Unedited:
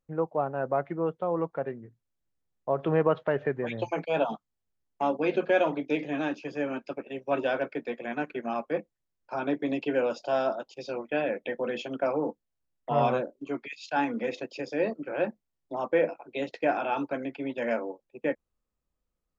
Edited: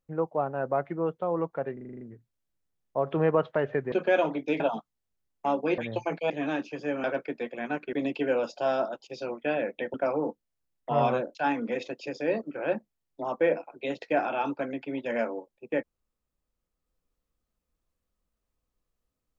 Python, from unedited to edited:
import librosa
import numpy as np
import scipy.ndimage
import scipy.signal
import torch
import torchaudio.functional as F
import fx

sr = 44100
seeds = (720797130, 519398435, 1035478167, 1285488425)

y = fx.edit(x, sr, fx.stutter(start_s=1.73, slice_s=0.04, count=8),
    fx.swap(start_s=3.64, length_s=0.52, other_s=5.34, other_length_s=0.68),
    fx.cut(start_s=6.76, length_s=0.75),
    fx.cut(start_s=8.4, length_s=1.2),
    fx.cut(start_s=11.61, length_s=0.33),
    fx.cut(start_s=13.35, length_s=0.52), tone=tone)